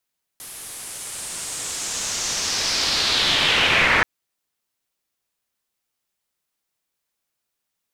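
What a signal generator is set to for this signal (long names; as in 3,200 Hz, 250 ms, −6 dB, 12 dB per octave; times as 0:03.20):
filter sweep on noise white, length 3.63 s lowpass, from 11,000 Hz, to 1,800 Hz, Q 2.6, linear, gain ramp +28 dB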